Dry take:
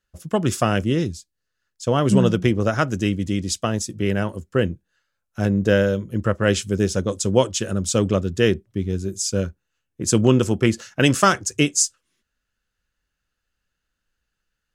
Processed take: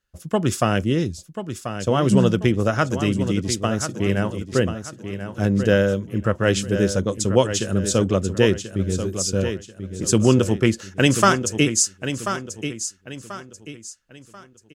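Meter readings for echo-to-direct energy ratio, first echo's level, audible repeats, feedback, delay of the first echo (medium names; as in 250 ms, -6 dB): -9.0 dB, -9.5 dB, 3, 34%, 1037 ms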